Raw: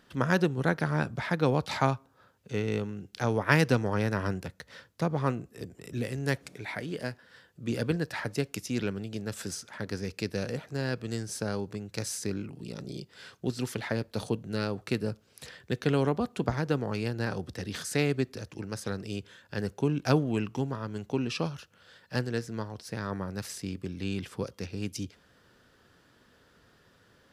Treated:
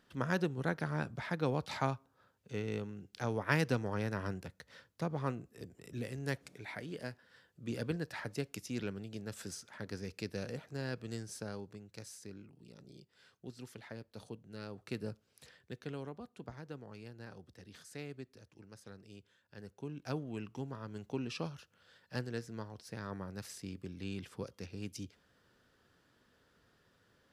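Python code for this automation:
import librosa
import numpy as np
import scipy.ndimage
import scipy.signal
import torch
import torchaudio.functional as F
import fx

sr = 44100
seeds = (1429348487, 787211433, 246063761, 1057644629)

y = fx.gain(x, sr, db=fx.line((11.16, -8.0), (12.21, -16.5), (14.51, -16.5), (15.06, -9.0), (16.12, -18.5), (19.55, -18.5), (20.93, -8.5)))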